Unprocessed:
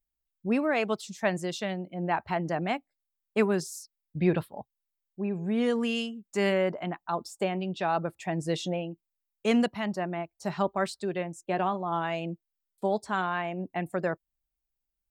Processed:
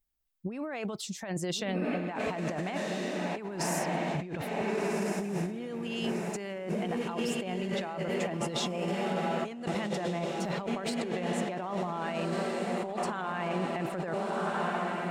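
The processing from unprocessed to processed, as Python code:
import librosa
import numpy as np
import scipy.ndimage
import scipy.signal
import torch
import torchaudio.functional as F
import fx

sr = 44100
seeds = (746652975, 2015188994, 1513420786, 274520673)

y = fx.echo_diffused(x, sr, ms=1466, feedback_pct=54, wet_db=-6)
y = fx.over_compress(y, sr, threshold_db=-33.0, ratio=-1.0)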